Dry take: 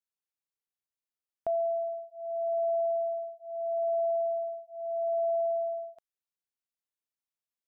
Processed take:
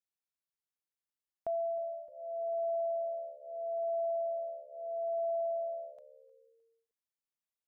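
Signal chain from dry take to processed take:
echo with shifted repeats 308 ms, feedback 46%, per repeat −71 Hz, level −20 dB
level −5 dB

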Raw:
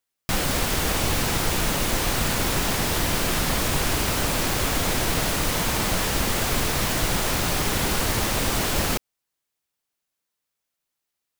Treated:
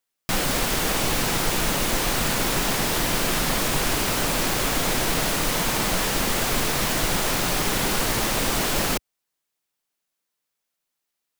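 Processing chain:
parametric band 71 Hz −13 dB 0.82 octaves
level +1 dB

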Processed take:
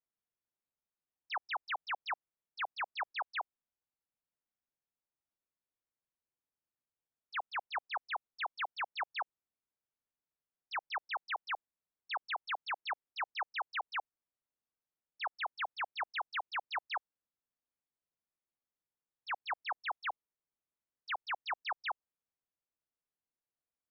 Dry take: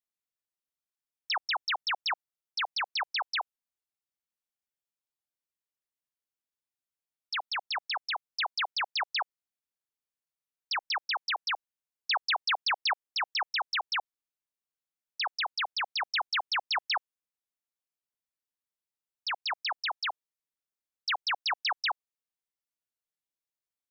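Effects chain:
high-shelf EQ 2,600 Hz −12 dB
brickwall limiter −31.5 dBFS, peak gain reduction 7.5 dB
high-frequency loss of the air 360 metres
level +2.5 dB

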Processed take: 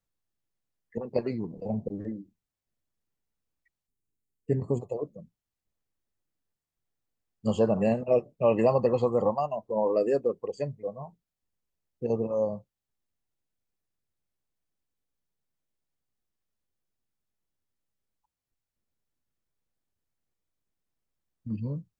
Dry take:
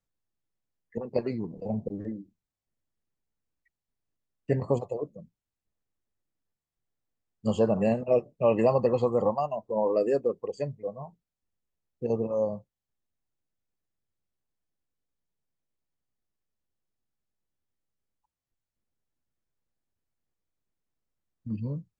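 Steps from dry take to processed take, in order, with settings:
gain on a spectral selection 0:03.87–0:04.89, 460–6,400 Hz −10 dB

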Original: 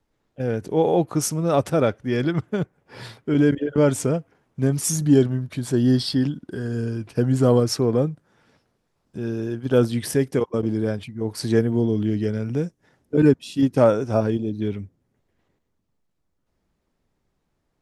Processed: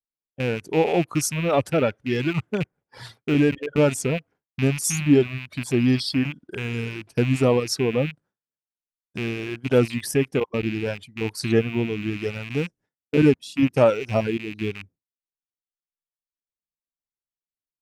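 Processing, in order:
loose part that buzzes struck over −28 dBFS, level −19 dBFS
reverb reduction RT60 1.5 s
downward expander −45 dBFS

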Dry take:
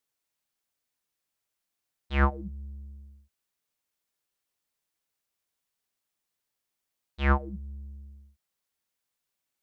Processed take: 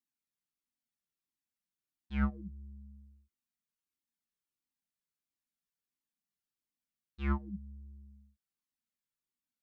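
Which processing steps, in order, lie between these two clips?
drawn EQ curve 100 Hz 0 dB, 240 Hz +13 dB, 550 Hz −9 dB, 1,300 Hz −1 dB
flanger whose copies keep moving one way falling 1.5 Hz
level −7 dB

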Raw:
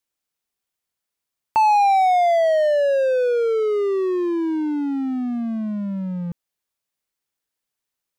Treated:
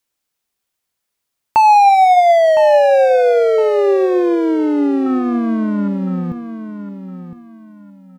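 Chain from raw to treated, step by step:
0:05.06–0:05.88: parametric band 1,300 Hz +14.5 dB 0.8 octaves
repeating echo 1,011 ms, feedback 27%, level −10.5 dB
coupled-rooms reverb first 0.59 s, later 3.2 s, from −20 dB, DRR 15.5 dB
level +6.5 dB

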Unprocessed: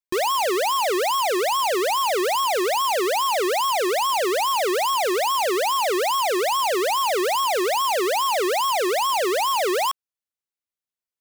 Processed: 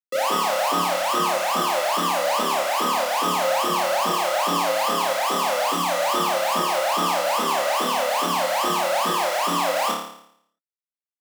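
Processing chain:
running median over 41 samples
tape wow and flutter 21 cents
flanger 0.2 Hz, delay 7.6 ms, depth 5.1 ms, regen +49%
frequency shifter +160 Hz
flutter between parallel walls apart 4.8 metres, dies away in 0.68 s

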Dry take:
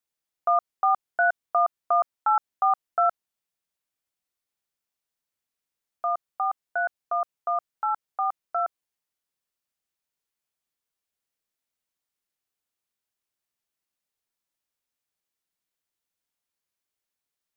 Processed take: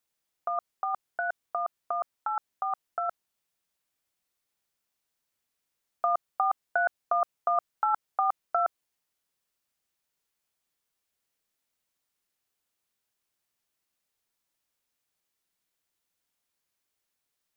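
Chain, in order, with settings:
compressor whose output falls as the input rises −27 dBFS, ratio −1

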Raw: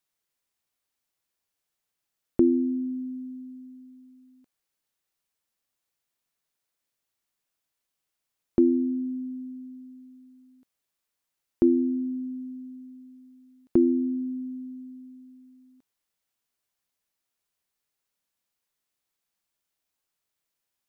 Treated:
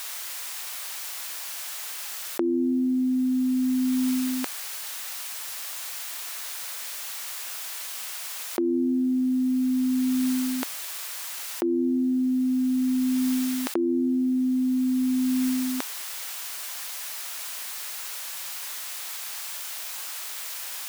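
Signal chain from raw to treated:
high-pass filter 800 Hz 12 dB per octave
envelope flattener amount 100%
level +8.5 dB

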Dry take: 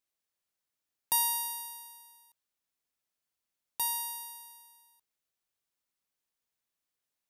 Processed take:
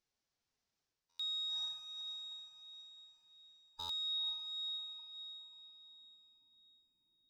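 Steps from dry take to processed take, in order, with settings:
hard clipping −22.5 dBFS, distortion −18 dB
gate on every frequency bin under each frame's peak −25 dB strong
phase-vocoder pitch shift with formants kept +5 semitones
spectral tilt −2 dB per octave
reversed playback
downward compressor, threshold −46 dBFS, peak gain reduction 14.5 dB
reversed playback
low-pass filter sweep 5,600 Hz → 280 Hz, 0:04.00–0:05.78
on a send: feedback delay with all-pass diffusion 513 ms, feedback 41%, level −5 dB
on the sum: buffer that repeats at 0:01.09/0:03.79, samples 512, times 8
level +3 dB

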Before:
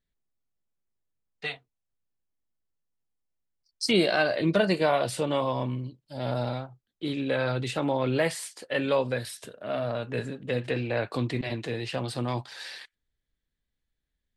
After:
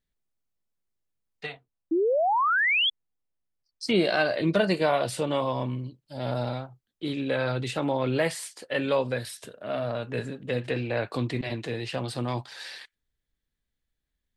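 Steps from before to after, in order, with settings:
0:01.45–0:04.04: high-shelf EQ 2,300 Hz → 4,500 Hz −10.5 dB
0:01.91–0:02.90: sound drawn into the spectrogram rise 310–3,500 Hz −23 dBFS

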